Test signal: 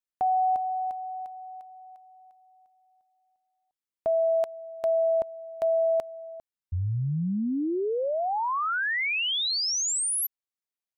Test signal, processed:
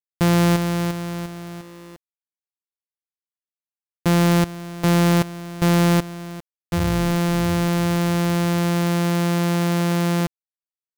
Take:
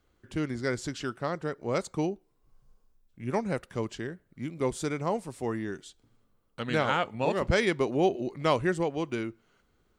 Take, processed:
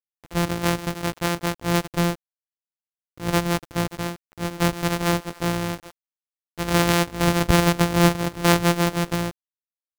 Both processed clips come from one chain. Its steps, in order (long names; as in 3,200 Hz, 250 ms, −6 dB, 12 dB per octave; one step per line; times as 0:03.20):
samples sorted by size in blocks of 256 samples
centre clipping without the shift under −47 dBFS
level +7.5 dB